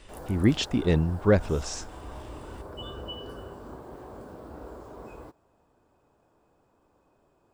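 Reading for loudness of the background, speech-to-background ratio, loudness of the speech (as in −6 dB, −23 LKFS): −42.5 LKFS, 17.0 dB, −25.5 LKFS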